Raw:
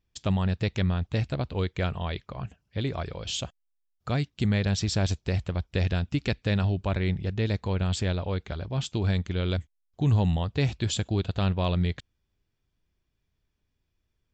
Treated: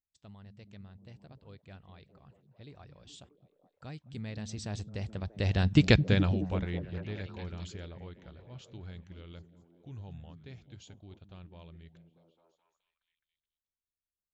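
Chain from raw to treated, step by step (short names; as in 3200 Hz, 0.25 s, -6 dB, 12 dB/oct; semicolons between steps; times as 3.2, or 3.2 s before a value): Doppler pass-by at 5.86, 21 m/s, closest 2.7 m; delay with a stepping band-pass 0.212 s, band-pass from 160 Hz, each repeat 0.7 oct, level -5 dB; gain +7 dB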